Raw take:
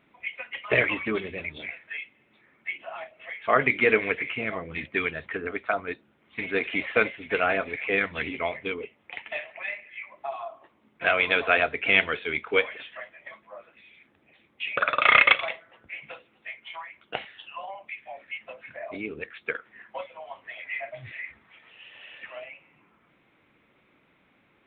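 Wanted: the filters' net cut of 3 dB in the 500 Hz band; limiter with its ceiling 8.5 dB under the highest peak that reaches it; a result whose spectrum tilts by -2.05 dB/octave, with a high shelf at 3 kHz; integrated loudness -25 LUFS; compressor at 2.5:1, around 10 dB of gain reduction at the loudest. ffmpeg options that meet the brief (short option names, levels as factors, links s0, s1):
-af "equalizer=f=500:t=o:g=-3.5,highshelf=f=3000:g=-5,acompressor=threshold=0.0355:ratio=2.5,volume=3.76,alimiter=limit=0.299:level=0:latency=1"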